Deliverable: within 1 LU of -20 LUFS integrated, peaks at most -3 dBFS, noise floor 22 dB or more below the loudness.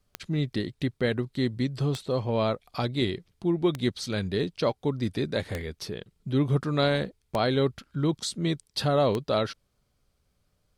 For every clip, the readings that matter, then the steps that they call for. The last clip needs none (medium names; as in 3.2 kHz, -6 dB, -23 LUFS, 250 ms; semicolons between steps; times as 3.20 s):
clicks found 6; loudness -28.5 LUFS; peak level -12.0 dBFS; loudness target -20.0 LUFS
-> de-click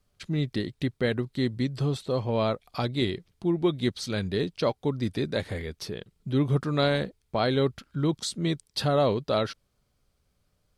clicks found 0; loudness -28.5 LUFS; peak level -12.5 dBFS; loudness target -20.0 LUFS
-> trim +8.5 dB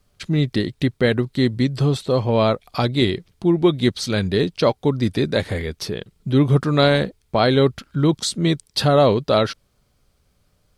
loudness -20.0 LUFS; peak level -4.0 dBFS; noise floor -64 dBFS